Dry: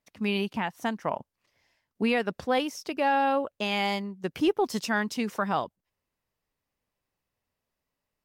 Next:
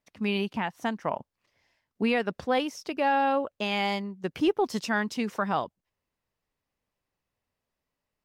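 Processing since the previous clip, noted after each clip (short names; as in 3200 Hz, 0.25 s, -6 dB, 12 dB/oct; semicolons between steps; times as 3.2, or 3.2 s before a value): high shelf 8600 Hz -7.5 dB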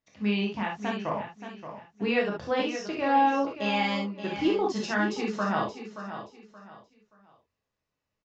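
on a send: feedback echo 0.576 s, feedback 29%, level -10.5 dB; on the sum: non-linear reverb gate 90 ms flat, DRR -2.5 dB; downsampling 16000 Hz; gain -4.5 dB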